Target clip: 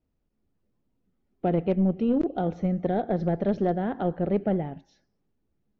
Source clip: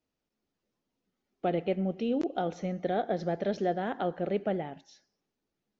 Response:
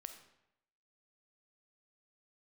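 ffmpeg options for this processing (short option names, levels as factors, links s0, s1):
-af "aemphasis=mode=reproduction:type=riaa,aeval=exprs='0.2*(cos(1*acos(clip(val(0)/0.2,-1,1)))-cos(1*PI/2))+0.0178*(cos(4*acos(clip(val(0)/0.2,-1,1)))-cos(4*PI/2))+0.0126*(cos(6*acos(clip(val(0)/0.2,-1,1)))-cos(6*PI/2))+0.00282*(cos(8*acos(clip(val(0)/0.2,-1,1)))-cos(8*PI/2))':c=same"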